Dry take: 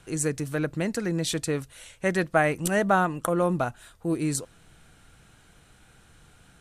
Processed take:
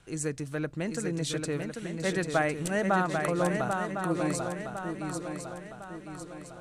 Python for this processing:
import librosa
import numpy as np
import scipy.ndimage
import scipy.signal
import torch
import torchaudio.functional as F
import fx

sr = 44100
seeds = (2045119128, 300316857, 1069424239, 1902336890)

y = scipy.signal.sosfilt(scipy.signal.butter(2, 9300.0, 'lowpass', fs=sr, output='sos'), x)
y = fx.echo_swing(y, sr, ms=1055, ratio=3, feedback_pct=45, wet_db=-5)
y = F.gain(torch.from_numpy(y), -5.0).numpy()